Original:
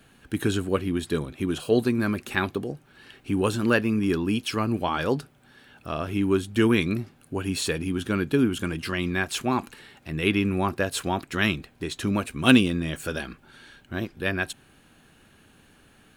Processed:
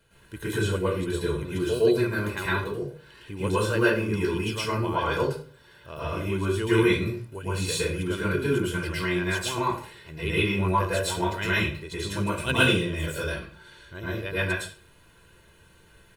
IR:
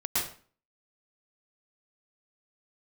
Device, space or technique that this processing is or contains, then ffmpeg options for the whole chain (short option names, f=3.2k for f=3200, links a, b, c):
microphone above a desk: -filter_complex "[0:a]aecho=1:1:2:0.71[a];[1:a]atrim=start_sample=2205[b];[a][b]afir=irnorm=-1:irlink=0,volume=-9dB"